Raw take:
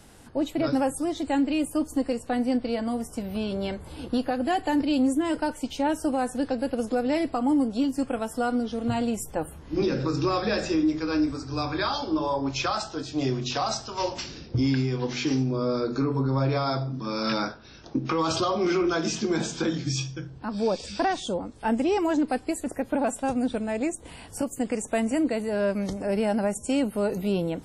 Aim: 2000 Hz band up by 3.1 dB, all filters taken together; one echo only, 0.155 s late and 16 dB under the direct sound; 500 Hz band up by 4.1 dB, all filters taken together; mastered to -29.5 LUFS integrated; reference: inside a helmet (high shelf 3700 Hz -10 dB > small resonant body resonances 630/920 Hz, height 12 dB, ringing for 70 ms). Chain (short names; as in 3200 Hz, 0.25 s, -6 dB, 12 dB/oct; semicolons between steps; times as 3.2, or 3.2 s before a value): bell 500 Hz +5 dB; bell 2000 Hz +6.5 dB; high shelf 3700 Hz -10 dB; echo 0.155 s -16 dB; small resonant body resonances 630/920 Hz, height 12 dB, ringing for 70 ms; gain -7 dB